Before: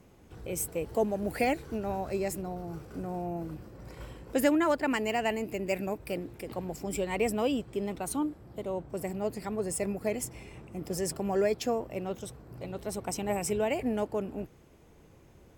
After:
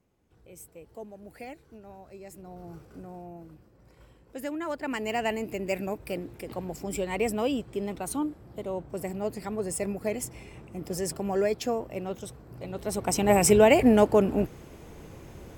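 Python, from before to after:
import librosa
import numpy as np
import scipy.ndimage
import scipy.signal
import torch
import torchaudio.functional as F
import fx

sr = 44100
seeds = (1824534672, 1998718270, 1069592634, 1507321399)

y = fx.gain(x, sr, db=fx.line((2.21, -14.5), (2.66, -4.0), (3.7, -11.5), (4.36, -11.5), (5.18, 1.0), (12.64, 1.0), (13.42, 11.5)))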